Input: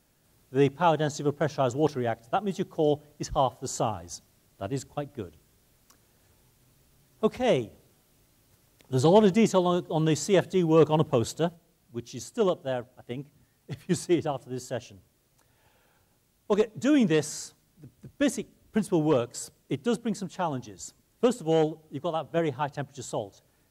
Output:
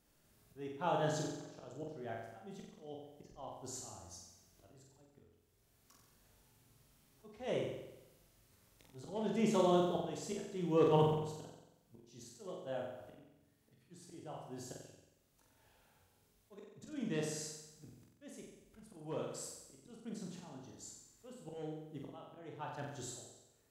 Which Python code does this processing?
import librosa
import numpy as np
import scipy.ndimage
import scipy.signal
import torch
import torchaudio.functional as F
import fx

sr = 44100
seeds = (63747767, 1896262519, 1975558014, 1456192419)

y = fx.auto_swell(x, sr, attack_ms=722.0)
y = fx.chorus_voices(y, sr, voices=4, hz=0.3, base_ms=20, depth_ms=2.4, mix_pct=30)
y = fx.room_flutter(y, sr, wall_m=7.8, rt60_s=0.92)
y = F.gain(torch.from_numpy(y), -5.5).numpy()